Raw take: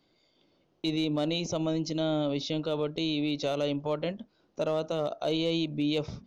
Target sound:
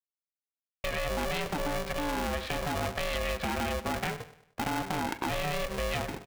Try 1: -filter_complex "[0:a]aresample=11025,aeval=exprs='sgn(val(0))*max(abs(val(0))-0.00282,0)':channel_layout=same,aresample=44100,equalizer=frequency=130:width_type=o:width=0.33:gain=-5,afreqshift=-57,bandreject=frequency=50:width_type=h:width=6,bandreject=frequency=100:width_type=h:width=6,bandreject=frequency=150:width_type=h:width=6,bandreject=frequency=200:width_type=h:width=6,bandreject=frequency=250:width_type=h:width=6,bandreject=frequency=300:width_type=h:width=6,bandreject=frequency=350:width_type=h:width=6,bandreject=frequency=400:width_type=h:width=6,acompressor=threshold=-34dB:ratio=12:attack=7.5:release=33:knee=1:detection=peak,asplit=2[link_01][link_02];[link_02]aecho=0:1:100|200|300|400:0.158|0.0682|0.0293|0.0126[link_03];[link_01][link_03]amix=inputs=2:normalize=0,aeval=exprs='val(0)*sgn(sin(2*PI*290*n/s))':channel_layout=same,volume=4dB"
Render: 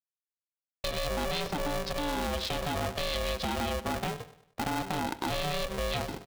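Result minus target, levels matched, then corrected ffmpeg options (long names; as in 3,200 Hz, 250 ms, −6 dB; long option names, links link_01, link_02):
2,000 Hz band −2.5 dB
-filter_complex "[0:a]aresample=11025,aeval=exprs='sgn(val(0))*max(abs(val(0))-0.00282,0)':channel_layout=same,aresample=44100,lowpass=frequency=2000:width_type=q:width=6.3,equalizer=frequency=130:width_type=o:width=0.33:gain=-5,afreqshift=-57,bandreject=frequency=50:width_type=h:width=6,bandreject=frequency=100:width_type=h:width=6,bandreject=frequency=150:width_type=h:width=6,bandreject=frequency=200:width_type=h:width=6,bandreject=frequency=250:width_type=h:width=6,bandreject=frequency=300:width_type=h:width=6,bandreject=frequency=350:width_type=h:width=6,bandreject=frequency=400:width_type=h:width=6,acompressor=threshold=-34dB:ratio=12:attack=7.5:release=33:knee=1:detection=peak,asplit=2[link_01][link_02];[link_02]aecho=0:1:100|200|300|400:0.158|0.0682|0.0293|0.0126[link_03];[link_01][link_03]amix=inputs=2:normalize=0,aeval=exprs='val(0)*sgn(sin(2*PI*290*n/s))':channel_layout=same,volume=4dB"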